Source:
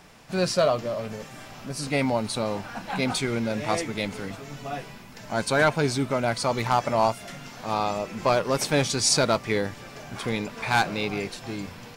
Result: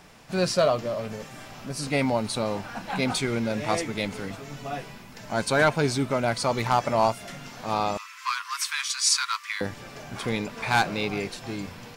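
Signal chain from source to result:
0:07.97–0:09.61: Butterworth high-pass 1,000 Hz 96 dB per octave

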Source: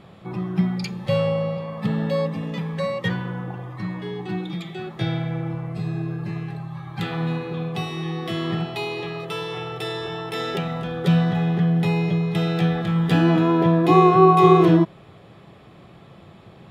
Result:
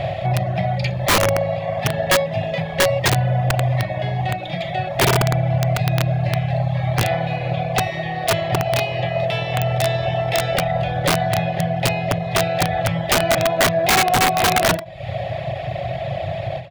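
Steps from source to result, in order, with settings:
compressor on every frequency bin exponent 0.6
in parallel at +3 dB: downward compressor 12 to 1, threshold −26 dBFS, peak gain reduction 19 dB
on the sum: drawn EQ curve 130 Hz 0 dB, 220 Hz −28 dB, 400 Hz −23 dB, 630 Hz +8 dB, 1,100 Hz −23 dB, 2,000 Hz −4 dB, 4,500 Hz −15 dB, 8,900 Hz −28 dB
on a send: repeating echo 64 ms, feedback 41%, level −12.5 dB
on the sum: reverb reduction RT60 0.97 s
high-shelf EQ 5,100 Hz +11 dB
notch filter 480 Hz, Q 12
wrap-around overflow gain 16.5 dB
every ending faded ahead of time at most 140 dB per second
level +7 dB

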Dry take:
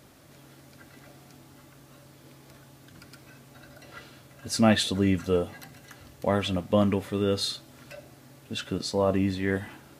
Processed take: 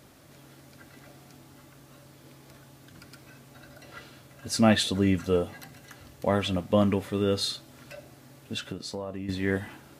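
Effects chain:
0:08.58–0:09.29: downward compressor 6 to 1, threshold −33 dBFS, peak gain reduction 13.5 dB

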